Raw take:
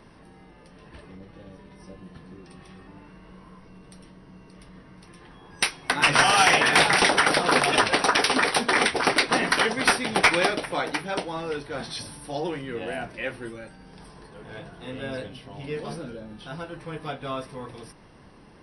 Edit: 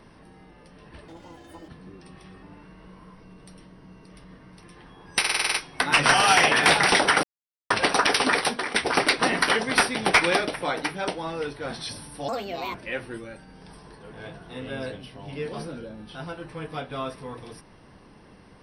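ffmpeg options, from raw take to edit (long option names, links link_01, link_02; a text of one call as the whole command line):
ffmpeg -i in.wav -filter_complex "[0:a]asplit=15[link_01][link_02][link_03][link_04][link_05][link_06][link_07][link_08][link_09][link_10][link_11][link_12][link_13][link_14][link_15];[link_01]atrim=end=1.084[link_16];[link_02]atrim=start=1.08:end=2.13,asetpts=PTS-STARTPTS,asetrate=76734,aresample=44100,atrim=end_sample=26612,asetpts=PTS-STARTPTS[link_17];[link_03]atrim=start=2.126:end=5.692[link_18];[link_04]atrim=start=5.638:end=5.692[link_19];[link_05]atrim=start=5.638:end=5.692[link_20];[link_06]atrim=start=5.638:end=5.692[link_21];[link_07]atrim=start=5.638:end=5.692[link_22];[link_08]atrim=start=5.638:end=5.692[link_23];[link_09]atrim=start=5.638:end=5.692[link_24];[link_10]atrim=start=5.638:end=7.33,asetpts=PTS-STARTPTS,afade=type=out:start_time=1.688:duration=0.004:curve=hsin[link_25];[link_11]atrim=start=7.33:end=7.8,asetpts=PTS-STARTPTS,volume=0[link_26];[link_12]atrim=start=7.8:end=8.84,asetpts=PTS-STARTPTS,afade=type=in:duration=0.004:curve=hsin,afade=type=out:start_time=0.7:duration=0.34:silence=0.11885[link_27];[link_13]atrim=start=8.84:end=12.384,asetpts=PTS-STARTPTS,afade=type=in:duration=0.004:curve=hsin:silence=0.11885[link_28];[link_14]atrim=start=12.38:end=13.06,asetpts=PTS-STARTPTS,asetrate=64827,aresample=44100[link_29];[link_15]atrim=start=13.056[link_30];[link_16][link_17]acrossfade=duration=0.004:curve1=hsin:curve2=hsin[link_31];[link_31][link_18]acrossfade=duration=0.004:curve1=hsin:curve2=hsin[link_32];[link_32][link_19]acrossfade=duration=0.004:curve1=hsin:curve2=hsin[link_33];[link_33][link_20]acrossfade=duration=0.004:curve1=hsin:curve2=hsin[link_34];[link_34][link_21]acrossfade=duration=0.004:curve1=hsin:curve2=hsin[link_35];[link_35][link_22]acrossfade=duration=0.004:curve1=hsin:curve2=hsin[link_36];[link_36][link_23]acrossfade=duration=0.004:curve1=hsin:curve2=hsin[link_37];[link_37][link_24]acrossfade=duration=0.004:curve1=hsin:curve2=hsin[link_38];[link_25][link_26][link_27][link_28]concat=n=4:v=0:a=1[link_39];[link_38][link_39]acrossfade=duration=0.004:curve1=hsin:curve2=hsin[link_40];[link_40][link_29]acrossfade=duration=0.004:curve1=hsin:curve2=hsin[link_41];[link_41][link_30]acrossfade=duration=0.004:curve1=hsin:curve2=hsin" out.wav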